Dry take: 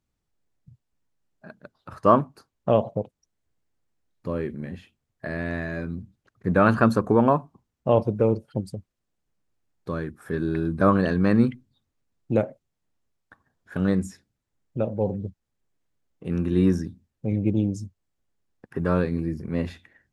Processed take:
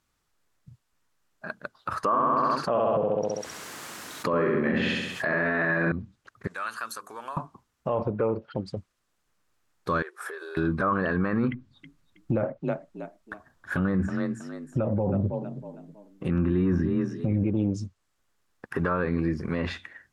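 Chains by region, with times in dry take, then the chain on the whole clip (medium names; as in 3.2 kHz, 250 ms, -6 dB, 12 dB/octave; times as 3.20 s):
2.04–5.92 s: high-pass 170 Hz + feedback delay 66 ms, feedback 47%, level -4 dB + level flattener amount 50%
6.47–7.37 s: differentiator + hum notches 50/100/150/200/250/300/350/400/450 Hz + compression 2:1, threshold -47 dBFS
8.11–8.77 s: low-pass 3.8 kHz + bass shelf 200 Hz -5.5 dB
10.02–10.57 s: brick-wall FIR high-pass 350 Hz + compression, threshold -42 dBFS
11.51–17.44 s: bass shelf 370 Hz +7.5 dB + band-stop 440 Hz, Q 8.2 + frequency-shifting echo 321 ms, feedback 31%, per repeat +31 Hz, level -14.5 dB
whole clip: low-pass that closes with the level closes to 2 kHz, closed at -19 dBFS; FFT filter 180 Hz 0 dB, 780 Hz +6 dB, 1.2 kHz +13 dB, 2.2 kHz +9 dB; peak limiter -17.5 dBFS; trim +1 dB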